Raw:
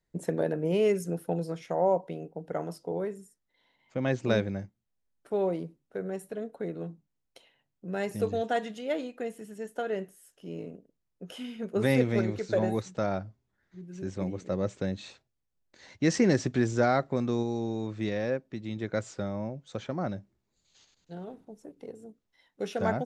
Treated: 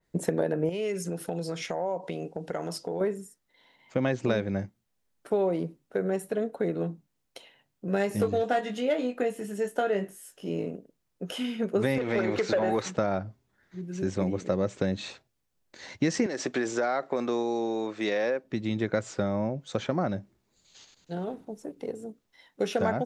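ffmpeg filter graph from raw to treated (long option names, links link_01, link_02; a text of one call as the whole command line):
ffmpeg -i in.wav -filter_complex "[0:a]asettb=1/sr,asplit=3[link_01][link_02][link_03];[link_01]atrim=end=0.694[link_04];[link_02]atrim=start=0.69:end=3.01,asetpts=PTS-STARTPTS,afade=type=in:duration=0.004:curve=qsin,afade=type=out:start_time=2.316:duration=0.004:curve=qsin,lowpass=8400,highshelf=frequency=2200:gain=10,acompressor=threshold=-37dB:ratio=4:attack=3.2:release=140:knee=1:detection=peak[link_05];[link_03]atrim=start=3.006[link_06];[link_04][link_05]acrossfade=duration=0.004:curve1=hsin:curve2=qsin[link_07];[link_07][link_06]acrossfade=duration=0.004:curve1=qsin:curve2=hsin,asettb=1/sr,asplit=3[link_08][link_09][link_10];[link_08]atrim=end=7.864[link_11];[link_09]atrim=start=7.86:end=10.5,asetpts=PTS-STARTPTS,afade=type=in:duration=0.004:curve=qsin,afade=type=out:start_time=2.636:duration=0.004:curve=qsin,volume=22dB,asoftclip=hard,volume=-22dB,asplit=2[link_12][link_13];[link_13]adelay=20,volume=-6dB[link_14];[link_12][link_14]amix=inputs=2:normalize=0,atrim=end_sample=116424[link_15];[link_10]atrim=start=10.496[link_16];[link_11][link_15]acrossfade=duration=0.004:curve1=hsin:curve2=qsin[link_17];[link_17][link_16]acrossfade=duration=0.004:curve1=qsin:curve2=hsin,asettb=1/sr,asplit=3[link_18][link_19][link_20];[link_18]atrim=end=11.984[link_21];[link_19]atrim=start=11.98:end=12.95,asetpts=PTS-STARTPTS,afade=type=in:duration=0.004:curve=qsin,afade=type=out:start_time=0.966:duration=0.004:curve=qsin,acompressor=threshold=-37dB:ratio=2:attack=3.2:release=140:knee=1:detection=peak,asplit=2[link_22][link_23];[link_23]highpass=frequency=720:poles=1,volume=19dB,asoftclip=type=tanh:threshold=-18.5dB[link_24];[link_22][link_24]amix=inputs=2:normalize=0,lowpass=frequency=3300:poles=1,volume=-6dB[link_25];[link_20]atrim=start=12.946[link_26];[link_21][link_25]acrossfade=duration=0.004:curve1=hsin:curve2=qsin[link_27];[link_27][link_26]acrossfade=duration=0.004:curve1=qsin:curve2=hsin,asettb=1/sr,asplit=3[link_28][link_29][link_30];[link_28]atrim=end=16.264[link_31];[link_29]atrim=start=16.26:end=18.44,asetpts=PTS-STARTPTS,afade=type=in:duration=0.004:curve=qsin,afade=type=out:start_time=2.176:duration=0.004:curve=qsin,highpass=380,acompressor=threshold=-29dB:ratio=6:attack=3.2:release=140:knee=1:detection=peak[link_32];[link_30]atrim=start=18.436[link_33];[link_31][link_32]acrossfade=duration=0.004:curve1=hsin:curve2=qsin[link_34];[link_34][link_33]acrossfade=duration=0.004:curve1=qsin:curve2=hsin,lowshelf=frequency=110:gain=-6.5,acompressor=threshold=-31dB:ratio=6,adynamicequalizer=threshold=0.002:dfrequency=3200:dqfactor=0.7:tfrequency=3200:tqfactor=0.7:attack=5:release=100:ratio=0.375:range=2.5:mode=cutabove:tftype=highshelf,volume=8.5dB" out.wav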